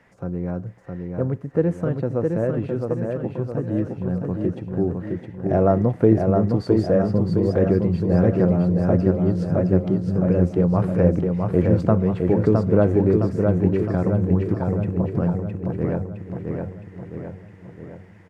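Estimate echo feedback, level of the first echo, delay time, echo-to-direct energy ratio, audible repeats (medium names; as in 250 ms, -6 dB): 54%, -4.0 dB, 663 ms, -2.5 dB, 6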